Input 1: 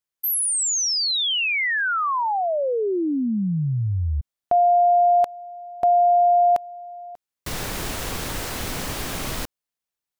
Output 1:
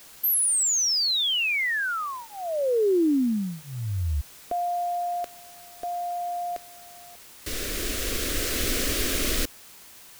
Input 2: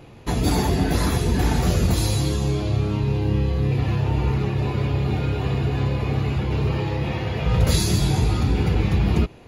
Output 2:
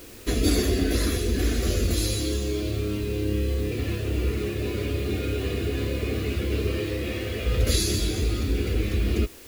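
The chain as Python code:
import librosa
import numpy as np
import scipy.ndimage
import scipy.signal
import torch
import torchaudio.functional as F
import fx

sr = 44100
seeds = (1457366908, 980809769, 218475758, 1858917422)

y = fx.rider(x, sr, range_db=5, speed_s=2.0)
y = fx.fixed_phaser(y, sr, hz=360.0, stages=4)
y = fx.quant_dither(y, sr, seeds[0], bits=8, dither='triangular')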